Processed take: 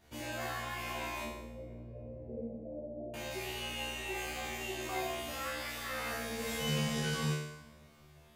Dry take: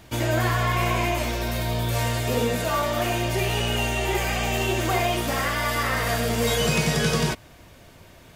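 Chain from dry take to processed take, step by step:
0:01.23–0:03.14: Butterworth low-pass 620 Hz 48 dB per octave
tuned comb filter 75 Hz, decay 0.81 s, harmonics all, mix 100%
on a send: convolution reverb RT60 3.1 s, pre-delay 101 ms, DRR 19 dB

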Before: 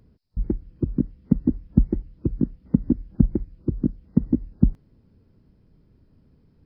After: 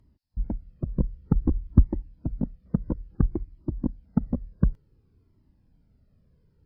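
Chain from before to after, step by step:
harmonic generator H 7 −31 dB, 8 −27 dB, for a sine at −1 dBFS
0:00.97–0:01.80: low-shelf EQ 110 Hz +10.5 dB
flanger whose copies keep moving one way falling 0.56 Hz

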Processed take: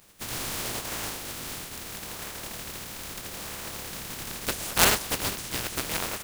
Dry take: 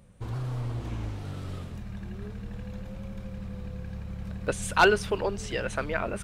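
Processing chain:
compressing power law on the bin magnitudes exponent 0.15
in parallel at −9 dB: sample-and-hold swept by an LFO 38×, swing 160% 0.77 Hz
on the sum: level −1.5 dB

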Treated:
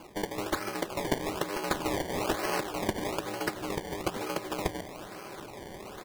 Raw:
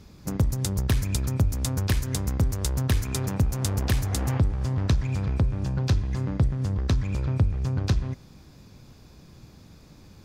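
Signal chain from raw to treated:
comb filter 4.5 ms, depth 45%
reversed playback
upward compression, threshold −28 dBFS
reversed playback
single-sideband voice off tune −82 Hz 440–3,000 Hz
phase-vocoder stretch with locked phases 0.59×
on a send at −11 dB: convolution reverb RT60 5.6 s, pre-delay 8 ms
on the sum: sample-and-hold swept by an LFO 23×, swing 100% 1.1 Hz
level +8.5 dB

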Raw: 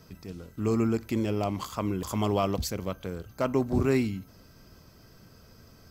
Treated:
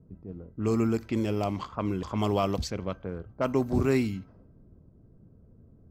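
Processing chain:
low-pass that shuts in the quiet parts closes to 310 Hz, open at −23.5 dBFS

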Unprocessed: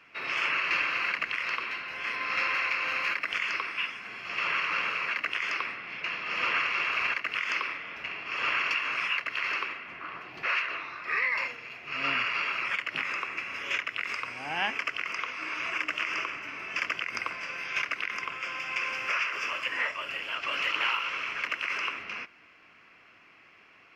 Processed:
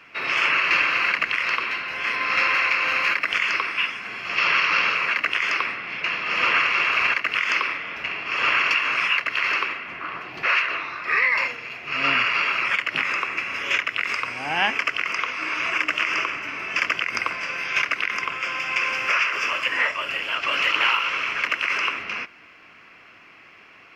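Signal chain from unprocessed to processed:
0:04.36–0:04.95: low-pass with resonance 5,400 Hz, resonance Q 1.8
level +8 dB

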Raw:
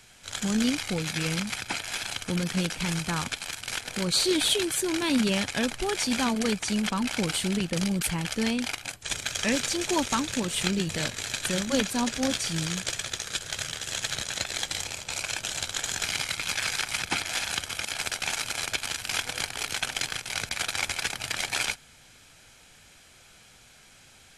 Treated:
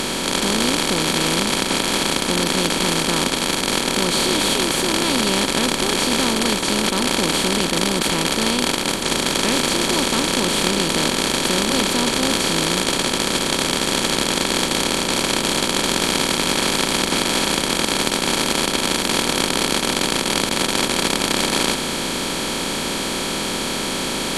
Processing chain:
compressor on every frequency bin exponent 0.2
level that may rise only so fast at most 160 dB per second
level −2.5 dB

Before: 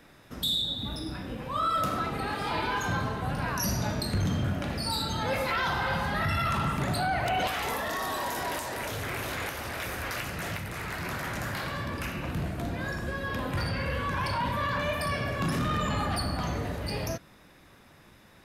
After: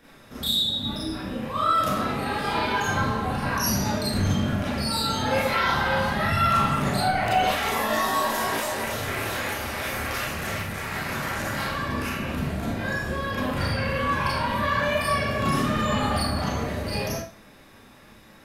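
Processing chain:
0:07.75–0:08.78: double-tracking delay 18 ms −4.5 dB
four-comb reverb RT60 0.34 s, combs from 28 ms, DRR −6.5 dB
level −2 dB

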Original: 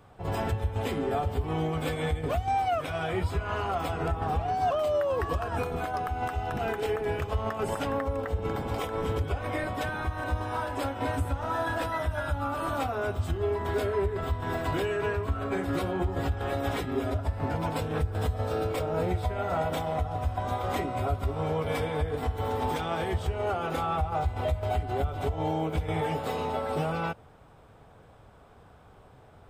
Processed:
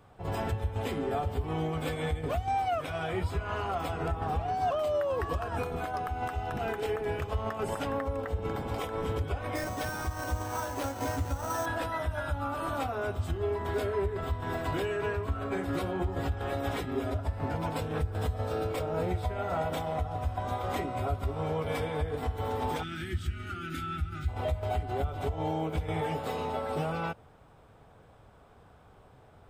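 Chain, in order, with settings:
0:09.55–0:11.66: sample-rate reduction 7,100 Hz, jitter 0%
0:22.83–0:24.28: gain on a spectral selection 370–1,200 Hz −27 dB
level −2.5 dB

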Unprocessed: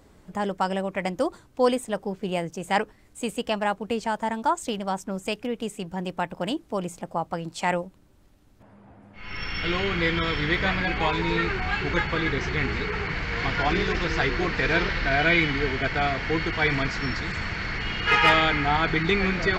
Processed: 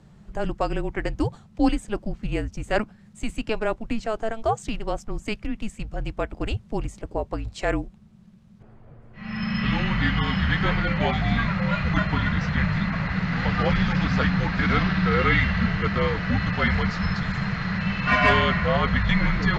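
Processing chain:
low-shelf EQ 190 Hz +7 dB
frequency shifter −220 Hz
high-frequency loss of the air 50 metres

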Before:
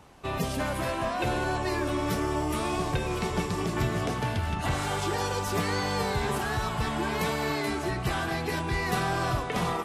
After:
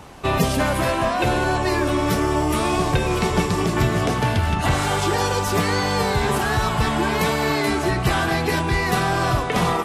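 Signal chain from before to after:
speech leveller within 4 dB 0.5 s
level +8.5 dB

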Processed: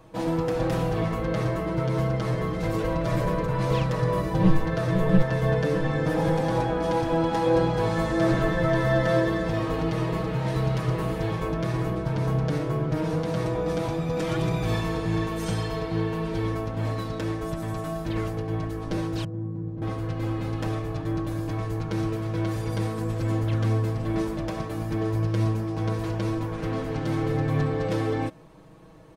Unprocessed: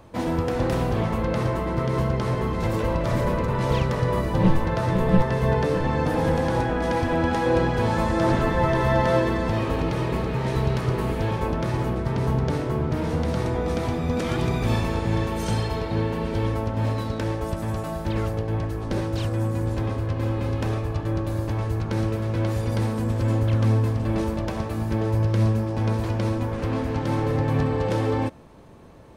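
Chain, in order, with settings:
0:19.24–0:19.82: resonant band-pass 180 Hz, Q 1.2
comb filter 6.3 ms, depth 88%
level −4.5 dB

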